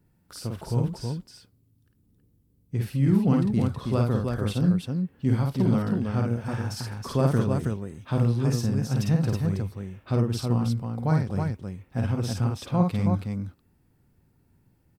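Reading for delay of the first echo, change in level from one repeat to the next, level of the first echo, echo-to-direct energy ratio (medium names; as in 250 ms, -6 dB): 51 ms, no regular repeats, -3.0 dB, -0.5 dB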